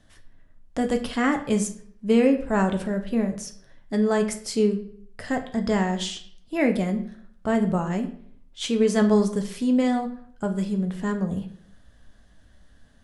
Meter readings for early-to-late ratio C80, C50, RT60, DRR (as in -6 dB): 15.0 dB, 11.5 dB, 0.60 s, 5.0 dB